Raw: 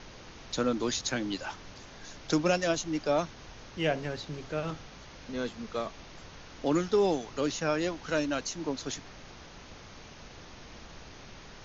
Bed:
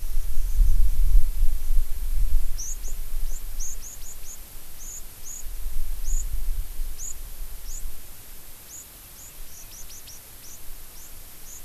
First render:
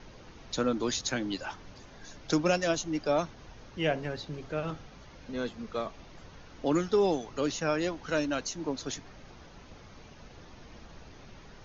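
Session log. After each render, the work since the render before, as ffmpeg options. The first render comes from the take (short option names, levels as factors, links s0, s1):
-af "afftdn=nr=7:nf=-49"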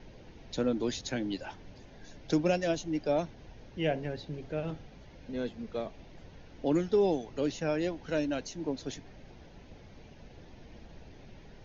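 -af "lowpass=f=2600:p=1,equalizer=f=1200:w=2.3:g=-11.5"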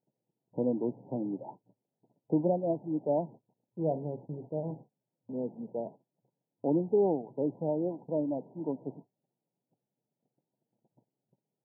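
-af "agate=range=0.02:threshold=0.00631:ratio=16:detection=peak,afftfilt=real='re*between(b*sr/4096,110,1000)':imag='im*between(b*sr/4096,110,1000)':win_size=4096:overlap=0.75"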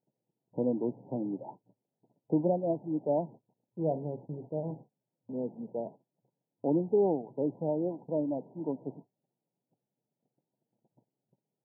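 -af anull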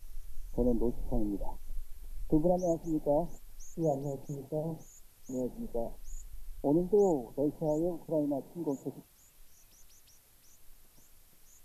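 -filter_complex "[1:a]volume=0.119[s0];[0:a][s0]amix=inputs=2:normalize=0"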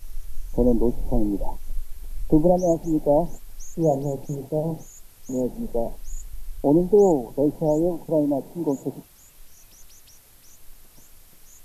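-af "volume=3.16"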